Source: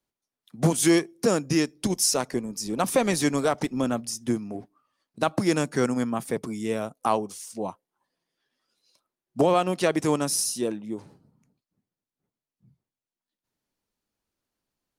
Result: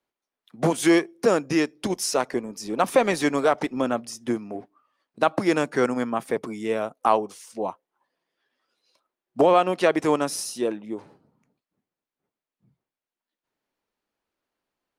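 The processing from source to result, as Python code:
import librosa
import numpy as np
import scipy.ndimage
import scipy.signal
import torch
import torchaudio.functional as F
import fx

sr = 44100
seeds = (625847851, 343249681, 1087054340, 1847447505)

y = fx.bass_treble(x, sr, bass_db=-11, treble_db=-11)
y = y * librosa.db_to_amplitude(4.5)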